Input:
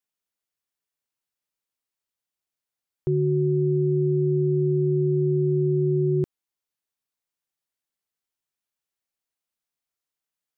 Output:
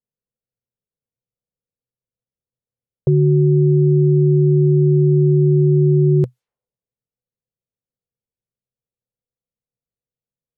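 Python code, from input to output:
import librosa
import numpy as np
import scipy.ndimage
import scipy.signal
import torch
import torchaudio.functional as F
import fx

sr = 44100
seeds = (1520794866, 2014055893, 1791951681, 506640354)

y = fx.graphic_eq_31(x, sr, hz=(125, 315, 500), db=(9, -10, 10))
y = fx.env_lowpass(y, sr, base_hz=320.0, full_db=-25.0)
y = F.gain(torch.from_numpy(y), 7.5).numpy()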